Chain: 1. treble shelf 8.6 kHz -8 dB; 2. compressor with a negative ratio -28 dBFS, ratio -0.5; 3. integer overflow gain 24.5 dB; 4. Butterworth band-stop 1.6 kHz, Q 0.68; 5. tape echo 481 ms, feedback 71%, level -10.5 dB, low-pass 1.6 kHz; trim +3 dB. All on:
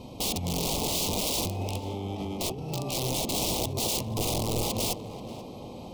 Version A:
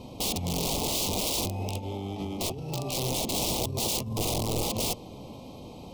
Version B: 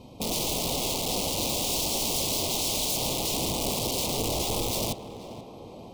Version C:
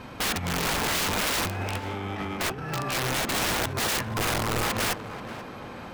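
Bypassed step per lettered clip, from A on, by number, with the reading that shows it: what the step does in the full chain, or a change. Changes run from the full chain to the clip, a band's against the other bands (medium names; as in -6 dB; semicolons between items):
5, momentary loudness spread change +3 LU; 2, momentary loudness spread change +3 LU; 4, 2 kHz band +13.5 dB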